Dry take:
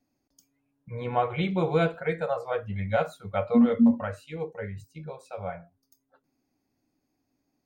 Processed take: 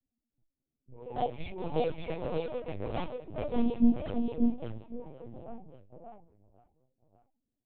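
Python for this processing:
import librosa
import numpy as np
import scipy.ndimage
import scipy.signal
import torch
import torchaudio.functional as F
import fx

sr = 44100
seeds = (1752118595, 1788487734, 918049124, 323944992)

p1 = fx.lower_of_two(x, sr, delay_ms=8.0)
p2 = fx.env_lowpass(p1, sr, base_hz=300.0, full_db=-21.5)
p3 = fx.band_shelf(p2, sr, hz=1500.0, db=-12.5, octaves=1.2)
p4 = fx.chorus_voices(p3, sr, voices=4, hz=0.59, base_ms=29, depth_ms=3.1, mix_pct=55)
p5 = p4 + 10.0 ** (-18.5 / 20.0) * np.pad(p4, (int(1092 * sr / 1000.0), 0))[:len(p4)]
p6 = fx.env_flanger(p5, sr, rest_ms=9.4, full_db=-23.5)
p7 = p6 + fx.echo_single(p6, sr, ms=584, db=-3.5, dry=0)
y = fx.lpc_vocoder(p7, sr, seeds[0], excitation='pitch_kept', order=10)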